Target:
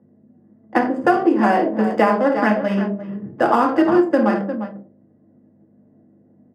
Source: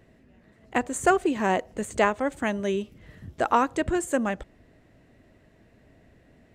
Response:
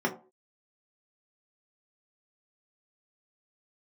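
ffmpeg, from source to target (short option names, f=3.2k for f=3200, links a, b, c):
-filter_complex "[0:a]asettb=1/sr,asplit=3[a][b][c];[a]atrim=end=1.424[d];[b]atrim=start=1.42:end=3.86,asetpts=PTS-STARTPTS,afade=t=in:d=0.004:c=qsin,afade=t=out:st=2.436:d=0.004:c=qsin,highshelf=f=3k:g=6.5[e];[c]atrim=start=3.856[f];[d][e]acrossfade=d=0.004:c1=hsin:c2=qsin[g];[g][f]acrossfade=d=0.004:c1=qsin:c2=hsin,aecho=1:1:51|56|83|350:0.299|0.237|0.158|0.237,adynamicsmooth=sensitivity=4:basefreq=630,agate=range=-9dB:threshold=-51dB:ratio=16:detection=peak,aeval=exprs='val(0)+0.00158*(sin(2*PI*50*n/s)+sin(2*PI*2*50*n/s)/2+sin(2*PI*3*50*n/s)/3+sin(2*PI*4*50*n/s)/4+sin(2*PI*5*50*n/s)/5)':c=same,lowshelf=f=100:g=-11.5,bandreject=f=67.09:t=h:w=4,bandreject=f=134.18:t=h:w=4,bandreject=f=201.27:t=h:w=4,bandreject=f=268.36:t=h:w=4,bandreject=f=335.45:t=h:w=4,bandreject=f=402.54:t=h:w=4,bandreject=f=469.63:t=h:w=4,bandreject=f=536.72:t=h:w=4,bandreject=f=603.81:t=h:w=4,bandreject=f=670.9:t=h:w=4,bandreject=f=737.99:t=h:w=4[h];[1:a]atrim=start_sample=2205,asetrate=38367,aresample=44100[i];[h][i]afir=irnorm=-1:irlink=0,acrossover=split=290|3600[j][k][l];[j]acompressor=threshold=-22dB:ratio=4[m];[k]acompressor=threshold=-13dB:ratio=4[n];[l]acompressor=threshold=-42dB:ratio=4[o];[m][n][o]amix=inputs=3:normalize=0,volume=-1dB"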